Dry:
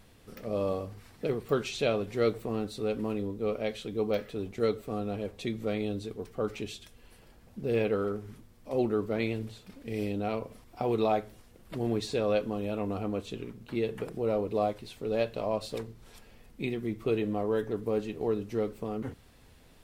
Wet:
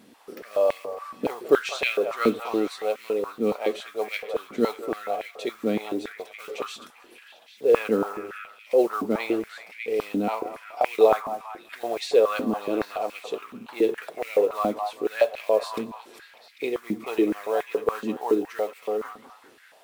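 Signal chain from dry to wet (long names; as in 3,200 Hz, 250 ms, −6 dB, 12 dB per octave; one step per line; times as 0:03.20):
echo through a band-pass that steps 199 ms, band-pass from 960 Hz, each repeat 0.7 octaves, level −5 dB
noise that follows the level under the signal 26 dB
high-pass on a step sequencer 7.1 Hz 250–2,200 Hz
level +3 dB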